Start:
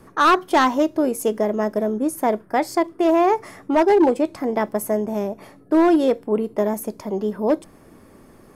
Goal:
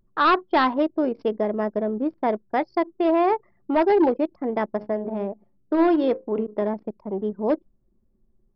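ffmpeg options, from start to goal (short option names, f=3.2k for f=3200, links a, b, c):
-filter_complex "[0:a]asettb=1/sr,asplit=3[a][b][c];[a]atrim=end=4.764[d];[b]atrim=start=4.76:end=6.62,asetpts=PTS-STARTPTS,afade=t=in:d=0.004:c=qsin,afade=t=out:st=1.856:d=0.004:c=qsin,bandreject=f=105:t=h:w=4,bandreject=f=210:t=h:w=4,bandreject=f=315:t=h:w=4,bandreject=f=420:t=h:w=4,bandreject=f=525:t=h:w=4,bandreject=f=630:t=h:w=4,bandreject=f=735:t=h:w=4,bandreject=f=840:t=h:w=4,bandreject=f=945:t=h:w=4,bandreject=f=1.05k:t=h:w=4,bandreject=f=1.155k:t=h:w=4,bandreject=f=1.26k:t=h:w=4,bandreject=f=1.365k:t=h:w=4,bandreject=f=1.47k:t=h:w=4,bandreject=f=1.575k:t=h:w=4,bandreject=f=1.68k:t=h:w=4,bandreject=f=1.785k:t=h:w=4,bandreject=f=1.89k:t=h:w=4,bandreject=f=1.995k:t=h:w=4,bandreject=f=2.1k:t=h:w=4,bandreject=f=2.205k:t=h:w=4,bandreject=f=2.31k:t=h:w=4,bandreject=f=2.415k:t=h:w=4,bandreject=f=2.52k:t=h:w=4,bandreject=f=2.625k:t=h:w=4[e];[c]atrim=start=6.616[f];[d][e]acrossfade=d=0.004:c1=hsin:c2=qsin[g];[g][f]acrossfade=d=0.004:c1=qsin:c2=hsin,anlmdn=63.1,aresample=11025,aresample=44100,volume=-3dB"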